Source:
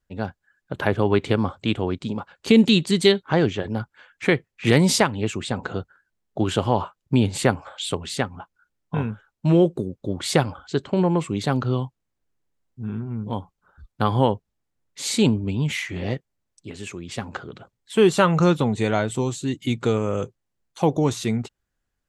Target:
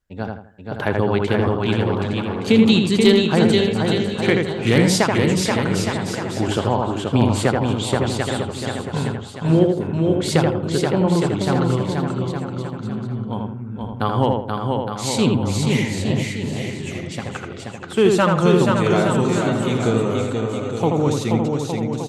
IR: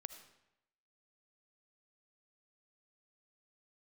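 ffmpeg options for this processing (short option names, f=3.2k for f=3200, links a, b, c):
-filter_complex "[0:a]asplit=2[a][b];[b]aecho=0:1:480|864|1171|1417|1614:0.631|0.398|0.251|0.158|0.1[c];[a][c]amix=inputs=2:normalize=0,asoftclip=type=hard:threshold=-5.5dB,asplit=2[d][e];[e]adelay=81,lowpass=f=2.2k:p=1,volume=-3dB,asplit=2[f][g];[g]adelay=81,lowpass=f=2.2k:p=1,volume=0.33,asplit=2[h][i];[i]adelay=81,lowpass=f=2.2k:p=1,volume=0.33,asplit=2[j][k];[k]adelay=81,lowpass=f=2.2k:p=1,volume=0.33[l];[f][h][j][l]amix=inputs=4:normalize=0[m];[d][m]amix=inputs=2:normalize=0"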